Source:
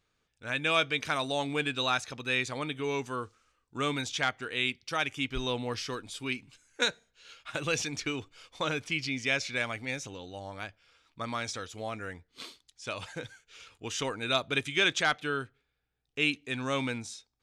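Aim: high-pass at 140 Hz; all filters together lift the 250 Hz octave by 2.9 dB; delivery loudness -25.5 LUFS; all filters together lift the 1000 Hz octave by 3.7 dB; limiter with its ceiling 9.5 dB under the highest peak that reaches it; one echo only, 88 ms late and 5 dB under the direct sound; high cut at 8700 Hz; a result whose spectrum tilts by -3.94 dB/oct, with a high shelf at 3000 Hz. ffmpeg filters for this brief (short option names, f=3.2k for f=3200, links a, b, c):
-af "highpass=140,lowpass=8.7k,equalizer=f=250:t=o:g=3.5,equalizer=f=1k:t=o:g=5.5,highshelf=f=3k:g=-4.5,alimiter=limit=-20.5dB:level=0:latency=1,aecho=1:1:88:0.562,volume=7.5dB"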